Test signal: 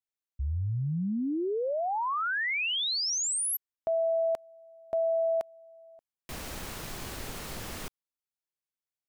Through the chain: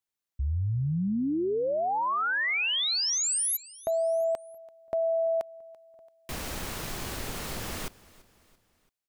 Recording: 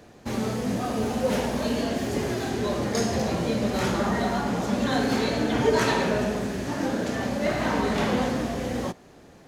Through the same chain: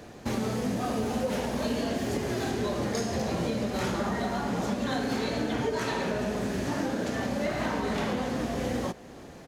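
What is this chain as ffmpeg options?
ffmpeg -i in.wav -filter_complex "[0:a]acompressor=threshold=-27dB:ratio=10:attack=3.5:release=575:knee=6:detection=rms,asplit=2[link_01][link_02];[link_02]aecho=0:1:337|674|1011:0.0841|0.0395|0.0186[link_03];[link_01][link_03]amix=inputs=2:normalize=0,volume=4dB" out.wav

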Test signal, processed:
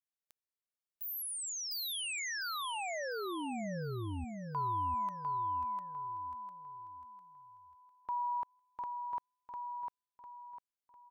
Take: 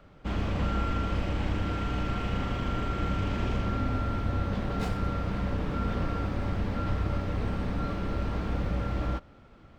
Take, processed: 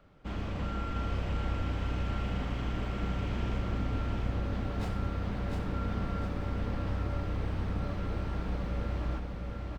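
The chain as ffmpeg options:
ffmpeg -i in.wav -af "aecho=1:1:701|1402|2103|2804|3505:0.668|0.247|0.0915|0.0339|0.0125,volume=-6dB" out.wav

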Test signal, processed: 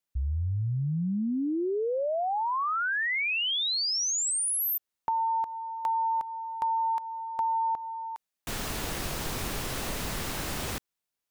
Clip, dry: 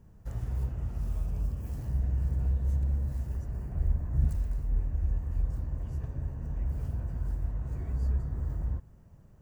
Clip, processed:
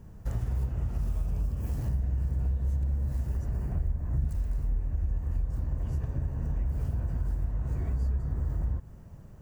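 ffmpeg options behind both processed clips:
ffmpeg -i in.wav -af "acompressor=threshold=-34dB:ratio=4,volume=7.5dB" out.wav

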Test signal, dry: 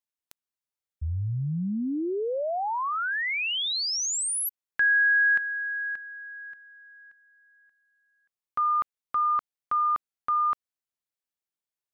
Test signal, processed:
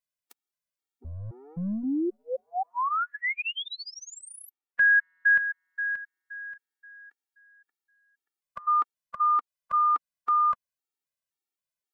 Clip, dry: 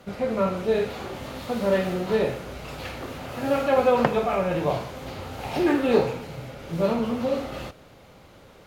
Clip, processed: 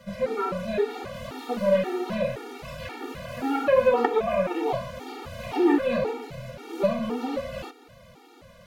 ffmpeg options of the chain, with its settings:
ffmpeg -i in.wav -filter_complex "[0:a]acrossover=split=200|3000[link_01][link_02][link_03];[link_01]aeval=exprs='(tanh(100*val(0)+0.45)-tanh(0.45))/100':channel_layout=same[link_04];[link_03]acompressor=threshold=-46dB:ratio=6:release=684:detection=rms[link_05];[link_04][link_02][link_05]amix=inputs=3:normalize=0,afftfilt=real='re*gt(sin(2*PI*1.9*pts/sr)*(1-2*mod(floor(b*sr/1024/240),2)),0)':imag='im*gt(sin(2*PI*1.9*pts/sr)*(1-2*mod(floor(b*sr/1024/240),2)),0)':win_size=1024:overlap=0.75,volume=2.5dB" out.wav

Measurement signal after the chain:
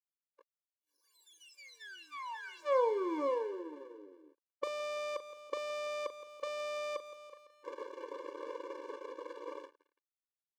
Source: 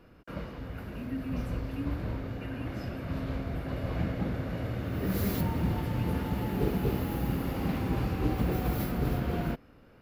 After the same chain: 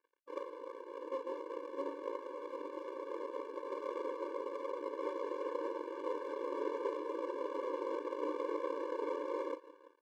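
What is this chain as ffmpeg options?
ffmpeg -i in.wav -filter_complex "[0:a]aeval=exprs='0.188*(cos(1*acos(clip(val(0)/0.188,-1,1)))-cos(1*PI/2))+0.0422*(cos(8*acos(clip(val(0)/0.188,-1,1)))-cos(8*PI/2))':channel_layout=same,aecho=1:1:168|336|504|672|840:0.106|0.0636|0.0381|0.0229|0.0137,asplit=2[link_01][link_02];[link_02]acompressor=threshold=-29dB:ratio=12,volume=1.5dB[link_03];[link_01][link_03]amix=inputs=2:normalize=0,bandpass=frequency=540:width_type=q:width=3.7:csg=0,aresample=16000,aeval=exprs='max(val(0),0)':channel_layout=same,aresample=44100,asplit=2[link_04][link_05];[link_05]adelay=39,volume=-11.5dB[link_06];[link_04][link_06]amix=inputs=2:normalize=0,aeval=exprs='sgn(val(0))*max(abs(val(0))-0.00188,0)':channel_layout=same,afftfilt=real='re*eq(mod(floor(b*sr/1024/300),2),1)':imag='im*eq(mod(floor(b*sr/1024/300),2),1)':win_size=1024:overlap=0.75,volume=3.5dB" out.wav

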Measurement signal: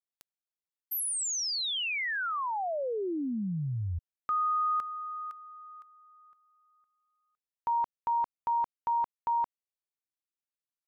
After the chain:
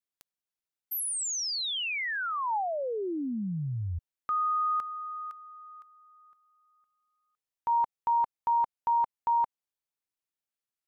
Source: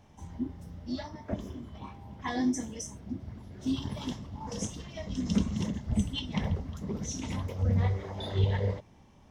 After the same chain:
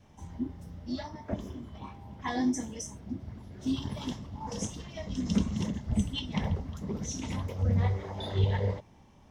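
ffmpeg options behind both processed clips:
ffmpeg -i in.wav -af "adynamicequalizer=threshold=0.00562:dfrequency=870:dqfactor=4:tfrequency=870:tqfactor=4:attack=5:release=100:ratio=0.375:range=2:mode=boostabove:tftype=bell" out.wav

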